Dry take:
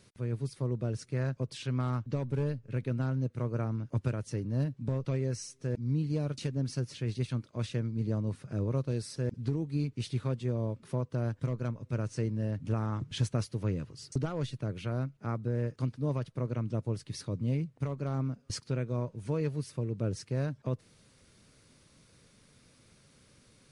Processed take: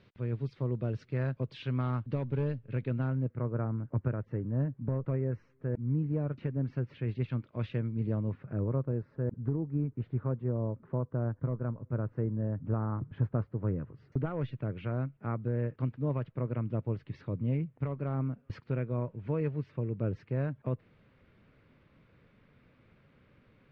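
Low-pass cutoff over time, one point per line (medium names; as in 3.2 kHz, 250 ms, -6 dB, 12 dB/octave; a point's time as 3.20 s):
low-pass 24 dB/octave
2.90 s 3.5 kHz
3.46 s 1.8 kHz
6.07 s 1.8 kHz
7.44 s 2.9 kHz
8.12 s 2.9 kHz
8.90 s 1.5 kHz
13.62 s 1.5 kHz
14.47 s 2.6 kHz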